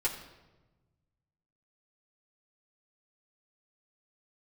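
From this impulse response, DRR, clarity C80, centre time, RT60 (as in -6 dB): -5.5 dB, 10.0 dB, 24 ms, 1.1 s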